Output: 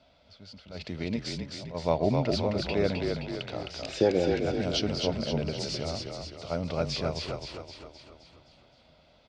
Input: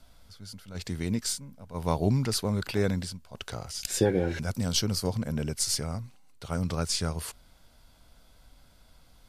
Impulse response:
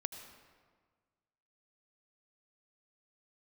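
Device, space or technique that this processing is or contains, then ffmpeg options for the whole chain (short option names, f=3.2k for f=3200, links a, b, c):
frequency-shifting delay pedal into a guitar cabinet: -filter_complex "[0:a]asplit=8[a][b][c][d][e][f][g][h];[b]adelay=261,afreqshift=-34,volume=-4dB[i];[c]adelay=522,afreqshift=-68,volume=-9.2dB[j];[d]adelay=783,afreqshift=-102,volume=-14.4dB[k];[e]adelay=1044,afreqshift=-136,volume=-19.6dB[l];[f]adelay=1305,afreqshift=-170,volume=-24.8dB[m];[g]adelay=1566,afreqshift=-204,volume=-30dB[n];[h]adelay=1827,afreqshift=-238,volume=-35.2dB[o];[a][i][j][k][l][m][n][o]amix=inputs=8:normalize=0,highpass=97,equalizer=f=110:t=q:w=4:g=-7,equalizer=f=190:t=q:w=4:g=-4,equalizer=f=610:t=q:w=4:g=9,equalizer=f=1.1k:t=q:w=4:g=-4,equalizer=f=1.6k:t=q:w=4:g=-5,equalizer=f=2.5k:t=q:w=4:g=4,lowpass=f=4.6k:w=0.5412,lowpass=f=4.6k:w=1.3066"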